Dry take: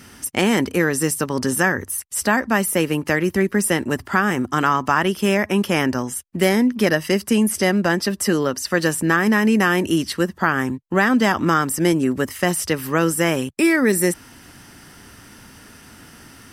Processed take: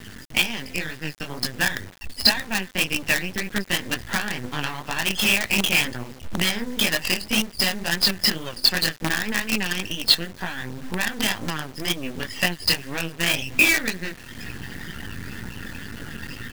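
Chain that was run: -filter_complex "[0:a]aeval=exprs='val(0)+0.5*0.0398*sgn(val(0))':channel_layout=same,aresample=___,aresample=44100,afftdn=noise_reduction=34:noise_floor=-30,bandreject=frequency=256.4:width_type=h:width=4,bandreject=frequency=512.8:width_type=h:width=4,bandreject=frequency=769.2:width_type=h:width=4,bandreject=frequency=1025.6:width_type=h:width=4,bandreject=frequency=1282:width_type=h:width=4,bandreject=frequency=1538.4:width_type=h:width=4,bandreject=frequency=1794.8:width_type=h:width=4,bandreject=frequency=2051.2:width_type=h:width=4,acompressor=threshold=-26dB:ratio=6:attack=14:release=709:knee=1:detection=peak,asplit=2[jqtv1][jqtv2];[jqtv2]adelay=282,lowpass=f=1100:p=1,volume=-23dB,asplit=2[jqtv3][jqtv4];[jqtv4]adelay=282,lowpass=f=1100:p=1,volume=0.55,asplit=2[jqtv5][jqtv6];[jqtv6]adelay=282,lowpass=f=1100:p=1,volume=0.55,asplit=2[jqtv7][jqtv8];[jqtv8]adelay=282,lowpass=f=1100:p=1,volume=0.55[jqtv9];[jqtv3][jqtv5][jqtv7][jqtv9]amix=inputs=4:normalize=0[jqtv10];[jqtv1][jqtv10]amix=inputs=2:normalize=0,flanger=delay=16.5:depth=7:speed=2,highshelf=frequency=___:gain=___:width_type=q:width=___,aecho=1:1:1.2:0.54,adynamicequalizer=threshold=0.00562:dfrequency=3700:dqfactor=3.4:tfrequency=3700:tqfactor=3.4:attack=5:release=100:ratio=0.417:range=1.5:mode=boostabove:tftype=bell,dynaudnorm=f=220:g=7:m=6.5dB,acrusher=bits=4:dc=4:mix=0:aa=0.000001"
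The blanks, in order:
11025, 1900, 14, 1.5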